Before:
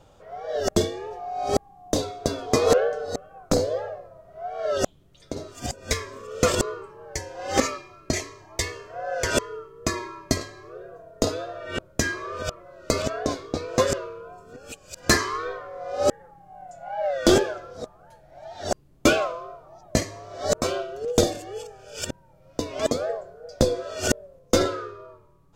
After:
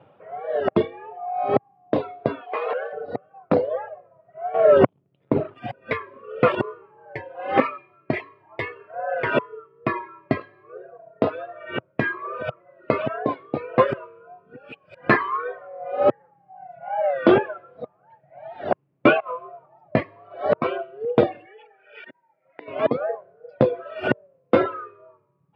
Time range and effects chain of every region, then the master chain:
2.41–2.93 CVSD 32 kbps + HPF 610 Hz + compressor 2.5:1, threshold -26 dBFS
4.54–5.58 tilt shelf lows +6.5 dB, about 750 Hz + sample leveller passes 2
19.2–19.66 dynamic EQ 850 Hz, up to -3 dB, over -34 dBFS, Q 0.88 + negative-ratio compressor -32 dBFS, ratio -0.5 + doubler 16 ms -7 dB
21.45–22.68 compressor 12:1, threshold -32 dBFS + speaker cabinet 420–4300 Hz, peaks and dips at 550 Hz -8 dB, 1100 Hz -9 dB, 2000 Hz +10 dB, 2800 Hz -4 dB
whole clip: elliptic band-pass 120–2600 Hz, stop band 40 dB; reverb removal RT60 1.4 s; dynamic EQ 1000 Hz, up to +5 dB, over -39 dBFS, Q 1.6; gain +3 dB

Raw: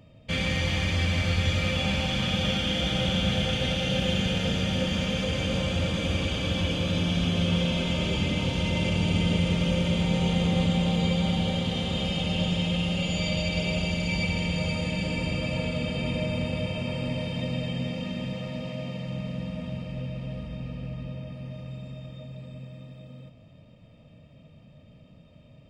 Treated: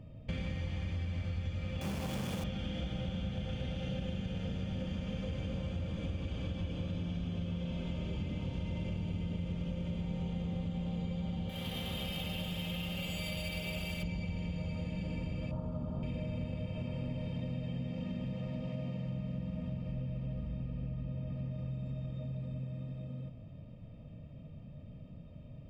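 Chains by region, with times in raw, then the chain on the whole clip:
1.81–2.44 half-waves squared off + HPF 220 Hz 6 dB/oct + high shelf 4500 Hz +5.5 dB
11.49–14.03 tilt shelf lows -7.5 dB, about 840 Hz + careless resampling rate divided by 3×, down none, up hold
15.51–16.03 resonant high shelf 1600 Hz -11.5 dB, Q 3 + notch 490 Hz, Q 11
whole clip: tilt -2.5 dB/oct; notch 3800 Hz, Q 20; compressor, threshold -31 dBFS; gain -4 dB

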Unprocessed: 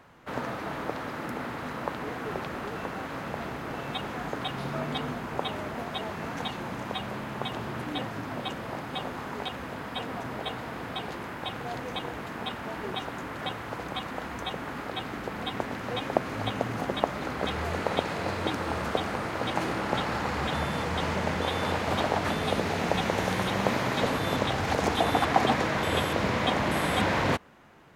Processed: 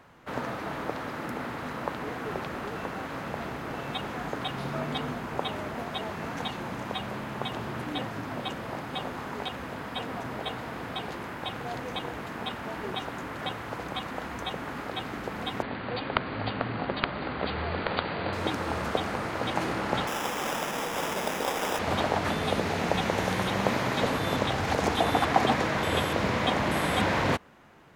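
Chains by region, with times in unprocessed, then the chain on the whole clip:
15.62–18.33 self-modulated delay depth 0.72 ms + brick-wall FIR low-pass 4800 Hz
20.07–21.79 HPF 270 Hz + sample-rate reducer 4300 Hz
whole clip: dry

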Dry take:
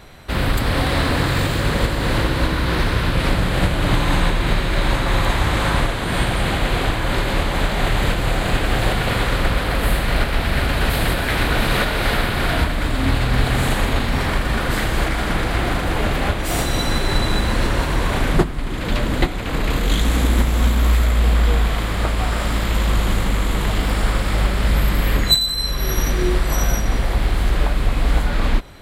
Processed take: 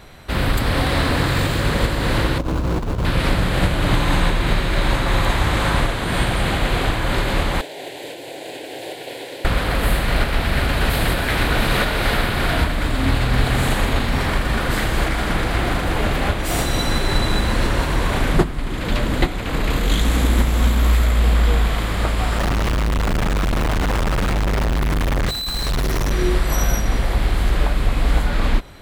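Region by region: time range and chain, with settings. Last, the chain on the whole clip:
2.38–3.05 median filter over 25 samples + negative-ratio compressor -20 dBFS, ratio -0.5
7.61–9.45 ladder high-pass 200 Hz, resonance 35% + fixed phaser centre 510 Hz, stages 4
22.38–26.11 infinite clipping + high shelf 2900 Hz -12 dB + Doppler distortion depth 0.19 ms
whole clip: dry

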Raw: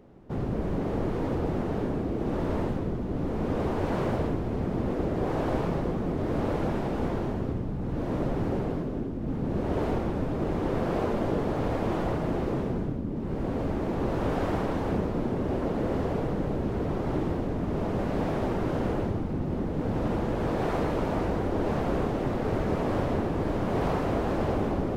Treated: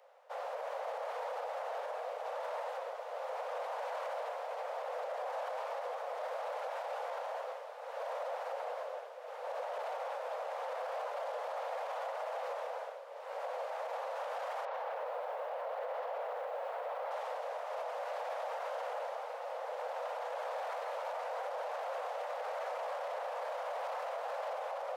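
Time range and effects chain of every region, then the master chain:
14.65–17.11 air absorption 210 m + lo-fi delay 85 ms, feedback 35%, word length 9-bit, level -14 dB
whole clip: steep high-pass 500 Hz 96 dB/oct; dynamic EQ 780 Hz, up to +3 dB, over -44 dBFS, Q 1.4; limiter -31.5 dBFS

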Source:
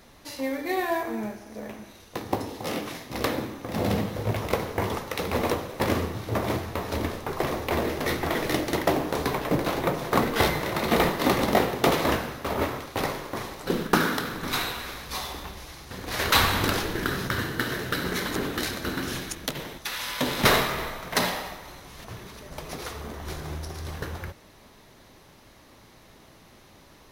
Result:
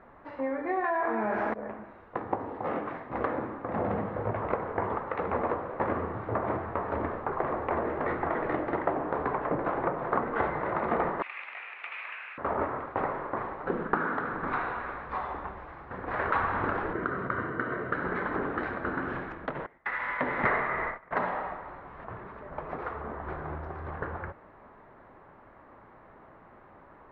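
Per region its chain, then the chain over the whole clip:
0.84–1.54 tilt +2.5 dB/oct + fast leveller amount 100%
11.22–12.38 compressor 3:1, threshold -30 dBFS + resonant high-pass 2500 Hz, resonance Q 9.1
16.93–17.92 high shelf 4300 Hz -8 dB + notch comb 840 Hz
19.66–21.11 gate -35 dBFS, range -20 dB + bell 2000 Hz +13 dB 0.3 oct
whole clip: LPF 1500 Hz 24 dB/oct; low shelf 450 Hz -12 dB; compressor 2.5:1, threshold -34 dBFS; gain +6.5 dB

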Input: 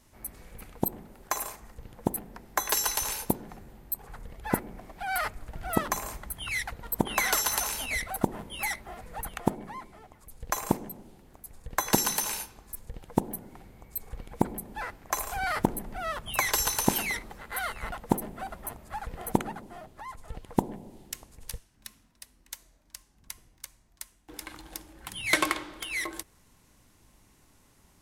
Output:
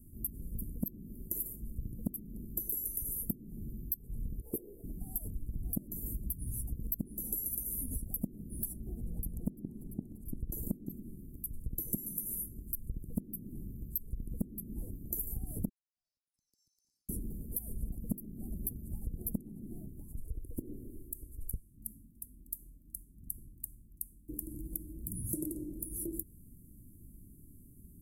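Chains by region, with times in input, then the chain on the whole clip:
4.41–4.84 resonant low shelf 300 Hz -13 dB, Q 3 + ensemble effect
8.73–11 high shelf 6500 Hz -7.5 dB + echo with dull and thin repeats by turns 0.171 s, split 830 Hz, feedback 72%, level -10 dB
15.69–17.09 Chebyshev band-pass 1400–5000 Hz, order 4 + compressor 3:1, threshold -43 dBFS
20.19–21.53 compressor 1.5:1, threshold -43 dBFS + fixed phaser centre 450 Hz, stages 4
whole clip: inverse Chebyshev band-stop 1200–3400 Hz, stop band 80 dB; compressor 12:1, threshold -41 dBFS; gain +8.5 dB

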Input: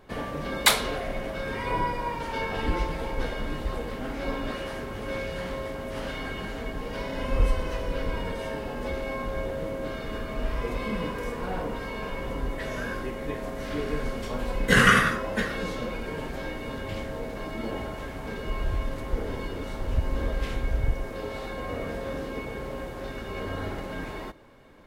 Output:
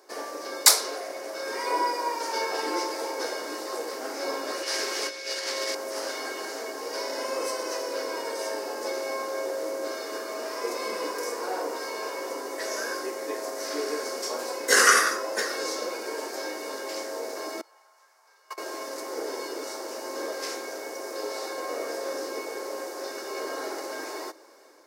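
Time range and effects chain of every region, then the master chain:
4.63–5.75 weighting filter D + negative-ratio compressor -33 dBFS, ratio -0.5
17.61–18.58 gate -27 dBFS, range -24 dB + resonant high-pass 1000 Hz, resonance Q 1.6
whole clip: elliptic high-pass 330 Hz, stop band 80 dB; resonant high shelf 4100 Hz +8.5 dB, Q 3; AGC gain up to 3 dB

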